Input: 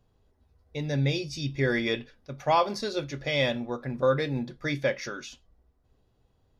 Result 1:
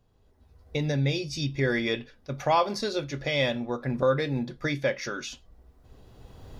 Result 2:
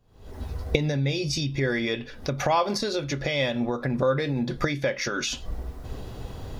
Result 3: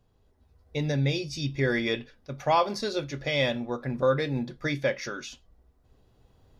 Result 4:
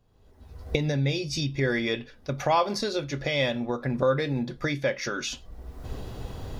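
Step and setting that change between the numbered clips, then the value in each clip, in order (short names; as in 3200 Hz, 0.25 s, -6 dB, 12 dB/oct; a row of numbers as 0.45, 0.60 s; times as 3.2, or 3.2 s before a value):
recorder AGC, rising by: 14, 87, 5.2, 36 dB/s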